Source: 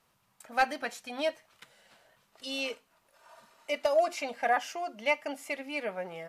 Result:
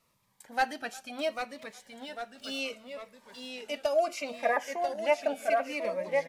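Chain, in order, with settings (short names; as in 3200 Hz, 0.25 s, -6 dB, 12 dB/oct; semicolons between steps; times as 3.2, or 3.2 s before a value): 1.15–2.58 median filter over 3 samples; 4.45–5.45 fifteen-band EQ 630 Hz +11 dB, 1600 Hz +4 dB, 4000 Hz -10 dB; echoes that change speed 0.761 s, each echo -1 st, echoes 3, each echo -6 dB; speakerphone echo 0.36 s, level -22 dB; cascading phaser falling 0.69 Hz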